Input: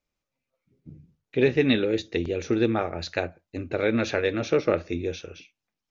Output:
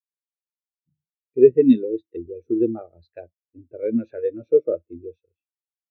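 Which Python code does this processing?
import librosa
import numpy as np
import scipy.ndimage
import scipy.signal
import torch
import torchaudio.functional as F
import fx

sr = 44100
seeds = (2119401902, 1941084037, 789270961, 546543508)

y = fx.spectral_expand(x, sr, expansion=2.5)
y = y * 10.0 ** (6.0 / 20.0)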